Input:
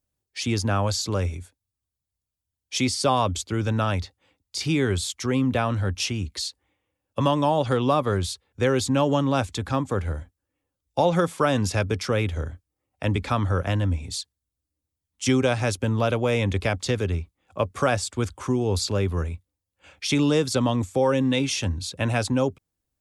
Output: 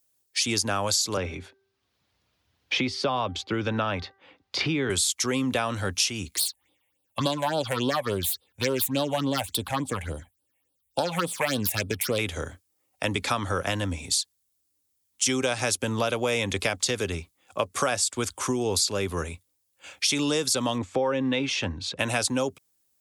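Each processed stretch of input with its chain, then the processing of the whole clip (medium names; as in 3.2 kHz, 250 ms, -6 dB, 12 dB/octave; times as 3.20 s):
1.17–4.90 s: distance through air 310 m + de-hum 390.1 Hz, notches 5 + three bands compressed up and down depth 70%
6.36–12.19 s: self-modulated delay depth 0.2 ms + phase shifter stages 6, 3.5 Hz, lowest notch 320–2000 Hz
20.78–21.99 s: low-pass 2.5 kHz + upward compressor, threshold -33 dBFS
whole clip: high-pass 310 Hz 6 dB/octave; treble shelf 4 kHz +12 dB; compression 4:1, threshold -26 dBFS; trim +3.5 dB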